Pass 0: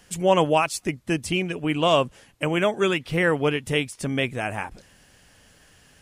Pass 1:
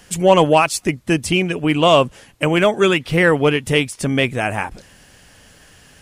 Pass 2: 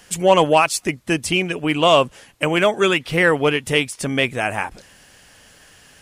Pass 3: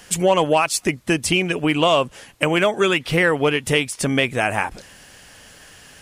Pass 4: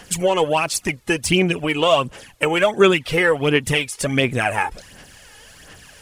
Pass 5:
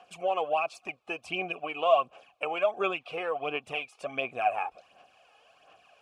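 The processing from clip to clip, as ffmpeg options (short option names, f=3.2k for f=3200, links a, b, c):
-af "acontrast=39,volume=2dB"
-af "lowshelf=f=330:g=-6.5"
-af "acompressor=threshold=-19dB:ratio=2.5,volume=3.5dB"
-af "aphaser=in_gain=1:out_gain=1:delay=2.4:decay=0.57:speed=1.4:type=sinusoidal,volume=-1.5dB"
-filter_complex "[0:a]asplit=3[a][b][c];[a]bandpass=f=730:t=q:w=8,volume=0dB[d];[b]bandpass=f=1.09k:t=q:w=8,volume=-6dB[e];[c]bandpass=f=2.44k:t=q:w=8,volume=-9dB[f];[d][e][f]amix=inputs=3:normalize=0"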